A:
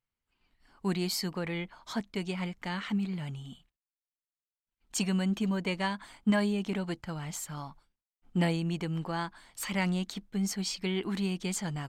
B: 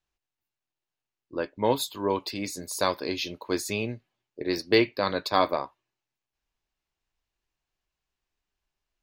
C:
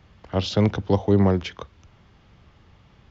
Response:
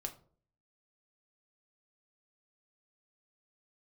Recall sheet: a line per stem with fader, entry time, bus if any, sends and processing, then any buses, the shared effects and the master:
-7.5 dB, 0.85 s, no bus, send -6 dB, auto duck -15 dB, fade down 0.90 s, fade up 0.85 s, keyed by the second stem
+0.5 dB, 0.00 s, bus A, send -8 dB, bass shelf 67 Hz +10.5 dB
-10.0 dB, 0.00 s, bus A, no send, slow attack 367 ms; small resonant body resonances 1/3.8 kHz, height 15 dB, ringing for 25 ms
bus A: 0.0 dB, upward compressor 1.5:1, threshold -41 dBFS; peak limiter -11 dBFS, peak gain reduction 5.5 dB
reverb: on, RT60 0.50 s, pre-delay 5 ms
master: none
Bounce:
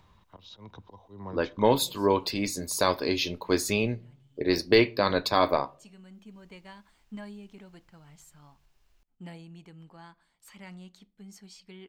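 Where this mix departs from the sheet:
stem A -7.5 dB -> -19.0 dB; stem C -10.0 dB -> -16.5 dB

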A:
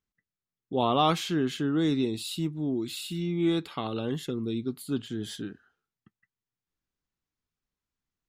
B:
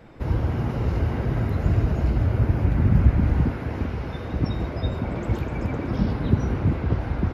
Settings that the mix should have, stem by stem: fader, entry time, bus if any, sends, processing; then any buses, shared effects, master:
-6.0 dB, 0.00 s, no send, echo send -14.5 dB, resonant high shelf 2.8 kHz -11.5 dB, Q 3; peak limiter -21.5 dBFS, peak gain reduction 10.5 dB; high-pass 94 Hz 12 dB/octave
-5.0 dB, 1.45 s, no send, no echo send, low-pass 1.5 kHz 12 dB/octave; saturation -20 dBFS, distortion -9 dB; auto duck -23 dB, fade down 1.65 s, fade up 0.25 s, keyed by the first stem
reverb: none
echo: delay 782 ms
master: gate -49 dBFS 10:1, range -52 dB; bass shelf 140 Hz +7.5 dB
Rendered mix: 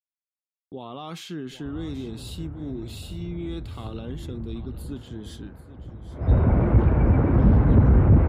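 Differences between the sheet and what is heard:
stem A: missing resonant high shelf 2.8 kHz -11.5 dB, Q 3; stem B -5.0 dB -> +6.0 dB

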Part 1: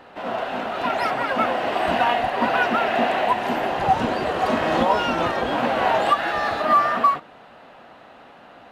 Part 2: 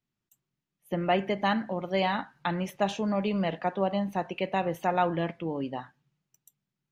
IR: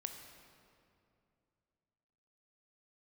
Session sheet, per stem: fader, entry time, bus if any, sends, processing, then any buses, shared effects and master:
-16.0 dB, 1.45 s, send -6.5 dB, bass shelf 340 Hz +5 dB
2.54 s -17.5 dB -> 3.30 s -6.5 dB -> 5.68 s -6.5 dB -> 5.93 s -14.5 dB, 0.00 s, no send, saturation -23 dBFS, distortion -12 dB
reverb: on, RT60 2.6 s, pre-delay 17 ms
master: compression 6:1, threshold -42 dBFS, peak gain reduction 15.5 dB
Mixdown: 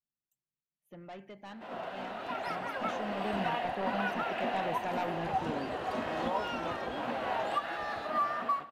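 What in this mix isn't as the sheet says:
stem 1: missing bass shelf 340 Hz +5 dB; master: missing compression 6:1, threshold -42 dBFS, peak gain reduction 15.5 dB

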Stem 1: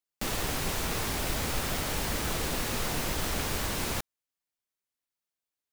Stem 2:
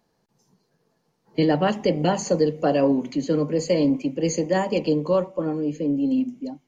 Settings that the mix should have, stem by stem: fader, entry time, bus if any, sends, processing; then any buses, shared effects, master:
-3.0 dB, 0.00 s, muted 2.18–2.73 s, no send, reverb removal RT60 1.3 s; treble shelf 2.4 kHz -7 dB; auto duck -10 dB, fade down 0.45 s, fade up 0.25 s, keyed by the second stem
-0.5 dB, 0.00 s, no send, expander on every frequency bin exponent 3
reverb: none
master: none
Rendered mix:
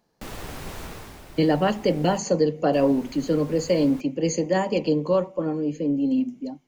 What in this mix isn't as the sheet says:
stem 1: missing reverb removal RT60 1.3 s; stem 2: missing expander on every frequency bin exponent 3

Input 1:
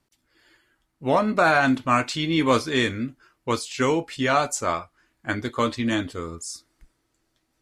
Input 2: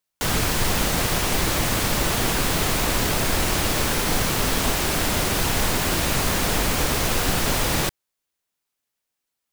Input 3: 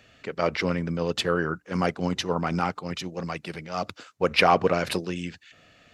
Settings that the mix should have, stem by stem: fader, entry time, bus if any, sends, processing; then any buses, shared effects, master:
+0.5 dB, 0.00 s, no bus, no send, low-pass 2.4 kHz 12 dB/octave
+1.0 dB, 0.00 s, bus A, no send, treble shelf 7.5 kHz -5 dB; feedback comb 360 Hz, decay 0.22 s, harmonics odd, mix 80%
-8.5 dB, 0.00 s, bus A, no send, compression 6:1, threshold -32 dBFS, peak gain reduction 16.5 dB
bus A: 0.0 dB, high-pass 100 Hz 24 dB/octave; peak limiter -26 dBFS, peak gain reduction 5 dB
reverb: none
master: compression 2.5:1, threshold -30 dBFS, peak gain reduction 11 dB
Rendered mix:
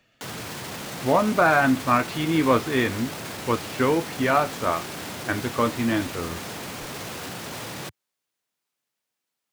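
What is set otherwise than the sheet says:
stem 2: missing feedback comb 360 Hz, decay 0.22 s, harmonics odd, mix 80%; master: missing compression 2.5:1, threshold -30 dBFS, peak gain reduction 11 dB

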